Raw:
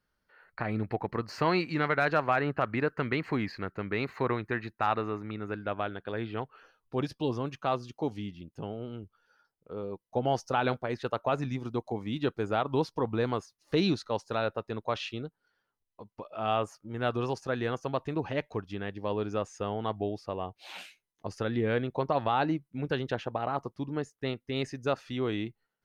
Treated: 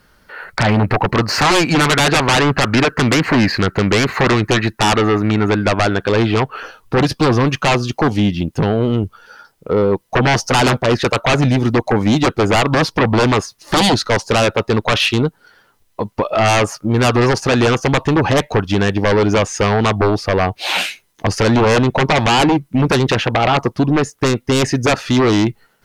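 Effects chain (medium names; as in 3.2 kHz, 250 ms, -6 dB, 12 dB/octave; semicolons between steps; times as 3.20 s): in parallel at +2 dB: compression, threshold -37 dBFS, peak gain reduction 15 dB; on the sum: sine folder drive 12 dB, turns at -13 dBFS; trim +4 dB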